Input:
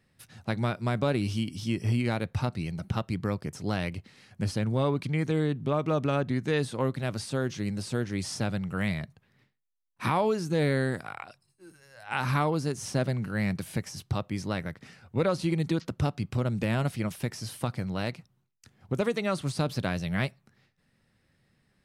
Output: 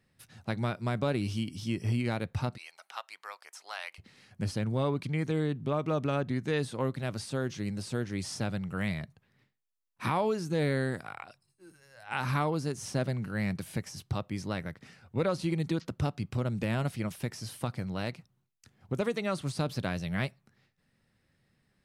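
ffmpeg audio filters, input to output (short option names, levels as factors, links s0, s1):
-filter_complex "[0:a]asplit=3[s0][s1][s2];[s0]afade=t=out:st=2.56:d=0.02[s3];[s1]highpass=f=800:w=0.5412,highpass=f=800:w=1.3066,afade=t=in:st=2.56:d=0.02,afade=t=out:st=3.98:d=0.02[s4];[s2]afade=t=in:st=3.98:d=0.02[s5];[s3][s4][s5]amix=inputs=3:normalize=0,volume=0.708"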